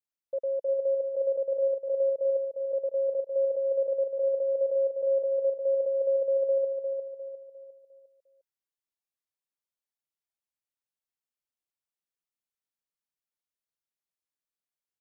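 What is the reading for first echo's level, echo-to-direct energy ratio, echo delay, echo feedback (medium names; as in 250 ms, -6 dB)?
-5.0 dB, -4.0 dB, 353 ms, 41%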